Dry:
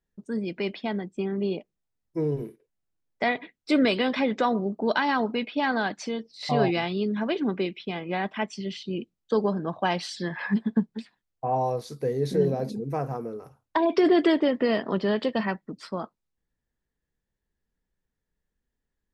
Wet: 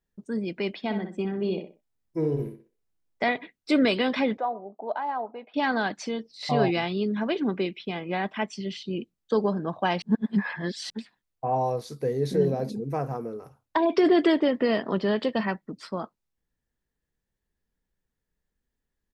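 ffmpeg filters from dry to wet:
ffmpeg -i in.wav -filter_complex "[0:a]asplit=3[link_01][link_02][link_03];[link_01]afade=type=out:start_time=0.82:duration=0.02[link_04];[link_02]asplit=2[link_05][link_06];[link_06]adelay=63,lowpass=frequency=2900:poles=1,volume=-7dB,asplit=2[link_07][link_08];[link_08]adelay=63,lowpass=frequency=2900:poles=1,volume=0.28,asplit=2[link_09][link_10];[link_10]adelay=63,lowpass=frequency=2900:poles=1,volume=0.28[link_11];[link_05][link_07][link_09][link_11]amix=inputs=4:normalize=0,afade=type=in:start_time=0.82:duration=0.02,afade=type=out:start_time=3.28:duration=0.02[link_12];[link_03]afade=type=in:start_time=3.28:duration=0.02[link_13];[link_04][link_12][link_13]amix=inputs=3:normalize=0,asettb=1/sr,asplit=3[link_14][link_15][link_16];[link_14]atrim=end=4.374[link_17];[link_15]atrim=start=4.37:end=5.54,asetpts=PTS-STARTPTS,afade=type=in:duration=0.004:curve=qsin,afade=type=out:start_time=1.166:duration=0.004:curve=qsin,bandpass=frequency=740:width_type=q:width=2.8[link_18];[link_16]atrim=start=5.536[link_19];[link_17][link_18]acrossfade=duration=0.004:curve1=hsin:curve2=qsin[link_20];[link_20][link_19]acrossfade=duration=0.004:curve1=qsin:curve2=hsin,asplit=3[link_21][link_22][link_23];[link_21]atrim=end=10.022[link_24];[link_22]atrim=start=10.018:end=10.902,asetpts=PTS-STARTPTS,areverse[link_25];[link_23]atrim=start=10.898[link_26];[link_24][link_25]acrossfade=duration=0.004:curve1=hsin:curve2=hsin[link_27];[link_27][link_26]acrossfade=duration=0.004:curve1=hsin:curve2=hsin" out.wav

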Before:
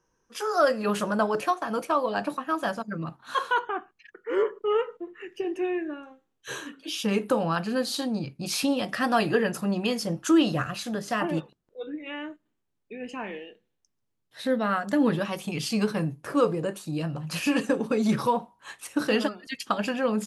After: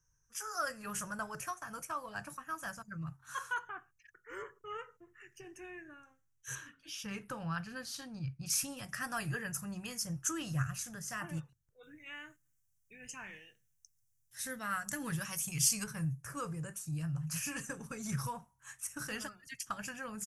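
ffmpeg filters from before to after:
ffmpeg -i in.wav -filter_complex "[0:a]asettb=1/sr,asplit=3[link_01][link_02][link_03];[link_01]atrim=end=6.554[link_04];[link_02]atrim=start=6.55:end=8.5,asetpts=PTS-STARTPTS,afade=type=in:duration=0.004:curve=qsin,afade=type=out:start_time=1.946:duration=0.004:curve=qsin,highshelf=frequency=5600:width_type=q:width=1.5:gain=-9.5[link_05];[link_03]atrim=start=8.496[link_06];[link_04][link_05]acrossfade=duration=0.004:curve1=hsin:curve2=qsin[link_07];[link_07][link_06]acrossfade=duration=0.004:curve1=qsin:curve2=hsin,asettb=1/sr,asplit=3[link_08][link_09][link_10];[link_08]atrim=end=11.834[link_11];[link_09]atrim=start=11.83:end=15.84,asetpts=PTS-STARTPTS,afade=type=in:duration=0.004:curve=qsin,afade=type=out:start_time=4.006:duration=0.004:curve=qsin,highshelf=frequency=2800:gain=10[link_12];[link_10]atrim=start=15.836[link_13];[link_11][link_12]acrossfade=duration=0.004:curve1=hsin:curve2=qsin[link_14];[link_14][link_13]acrossfade=duration=0.004:curve1=qsin:curve2=hsin,firequalizer=gain_entry='entry(130,0);entry(210,-21);entry(410,-26);entry(1500,-10);entry(4000,-22);entry(5800,-1)':delay=0.05:min_phase=1,volume=2dB" out.wav

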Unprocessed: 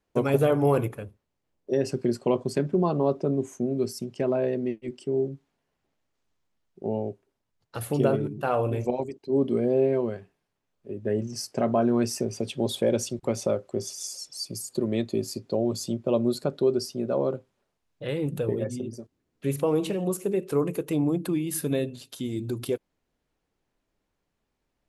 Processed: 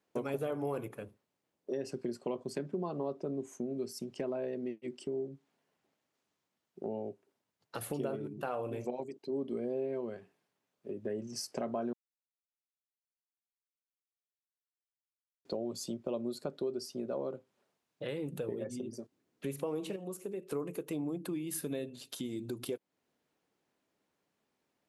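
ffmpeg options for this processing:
ffmpeg -i in.wav -filter_complex "[0:a]asplit=5[link_01][link_02][link_03][link_04][link_05];[link_01]atrim=end=11.93,asetpts=PTS-STARTPTS,afade=type=out:start_time=11.926:duration=0.004:curve=hsin[link_06];[link_02]atrim=start=11.93:end=15.45,asetpts=PTS-STARTPTS,volume=0[link_07];[link_03]atrim=start=15.45:end=19.962,asetpts=PTS-STARTPTS,afade=type=in:duration=0.004:curve=hsin[link_08];[link_04]atrim=start=19.958:end=20.512,asetpts=PTS-STARTPTS,volume=-8dB[link_09];[link_05]atrim=start=20.508[link_10];[link_06][link_07][link_08]concat=n=3:v=0:a=1[link_11];[link_11][link_09]acrossfade=duration=0.004:curve1=hsin:curve2=hsin[link_12];[link_12][link_10]acrossfade=duration=0.004:curve1=hsin:curve2=hsin,highpass=170,acompressor=threshold=-39dB:ratio=2.5" out.wav

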